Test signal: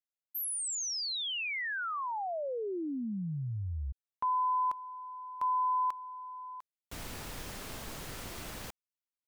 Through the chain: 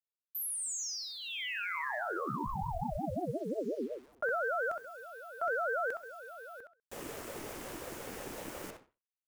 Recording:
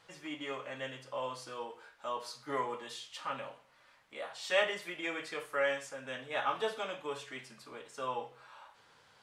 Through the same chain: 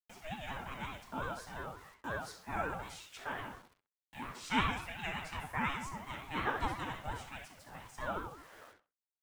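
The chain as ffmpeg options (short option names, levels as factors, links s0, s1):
-filter_complex "[0:a]bandreject=f=69.37:t=h:w=4,bandreject=f=138.74:t=h:w=4,bandreject=f=208.11:t=h:w=4,bandreject=f=277.48:t=h:w=4,bandreject=f=346.85:t=h:w=4,bandreject=f=416.22:t=h:w=4,bandreject=f=485.59:t=h:w=4,bandreject=f=554.96:t=h:w=4,bandreject=f=624.33:t=h:w=4,bandreject=f=693.7:t=h:w=4,bandreject=f=763.07:t=h:w=4,bandreject=f=832.44:t=h:w=4,bandreject=f=901.81:t=h:w=4,bandreject=f=971.18:t=h:w=4,bandreject=f=1040.55:t=h:w=4,bandreject=f=1109.92:t=h:w=4,bandreject=f=1179.29:t=h:w=4,bandreject=f=1248.66:t=h:w=4,bandreject=f=1318.03:t=h:w=4,bandreject=f=1387.4:t=h:w=4,bandreject=f=1456.77:t=h:w=4,bandreject=f=1526.14:t=h:w=4,bandreject=f=1595.51:t=h:w=4,bandreject=f=1664.88:t=h:w=4,bandreject=f=1734.25:t=h:w=4,bandreject=f=1803.62:t=h:w=4,bandreject=f=1872.99:t=h:w=4,bandreject=f=1942.36:t=h:w=4,bandreject=f=2011.73:t=h:w=4,bandreject=f=2081.1:t=h:w=4,bandreject=f=2150.47:t=h:w=4,bandreject=f=2219.84:t=h:w=4,agate=range=0.0224:threshold=0.00282:ratio=3:release=320:detection=rms,equalizer=f=3900:t=o:w=0.63:g=-8.5,acrusher=bits=9:mix=0:aa=0.000001,asplit=2[s0][s1];[s1]adelay=65,lowpass=f=3100:p=1,volume=0.596,asplit=2[s2][s3];[s3]adelay=65,lowpass=f=3100:p=1,volume=0.23,asplit=2[s4][s5];[s5]adelay=65,lowpass=f=3100:p=1,volume=0.23[s6];[s2][s4][s6]amix=inputs=3:normalize=0[s7];[s0][s7]amix=inputs=2:normalize=0,aeval=exprs='val(0)*sin(2*PI*430*n/s+430*0.3/5.6*sin(2*PI*5.6*n/s))':c=same,volume=1.19"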